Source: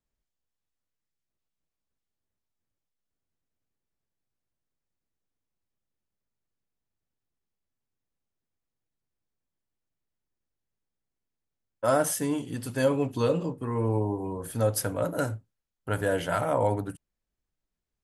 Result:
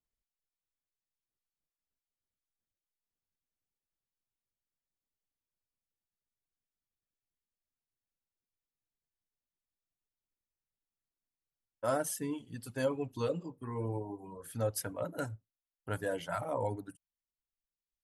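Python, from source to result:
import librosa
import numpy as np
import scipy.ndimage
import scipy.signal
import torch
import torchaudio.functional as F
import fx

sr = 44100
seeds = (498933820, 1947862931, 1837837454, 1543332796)

y = fx.dereverb_blind(x, sr, rt60_s=1.4)
y = F.gain(torch.from_numpy(y), -7.5).numpy()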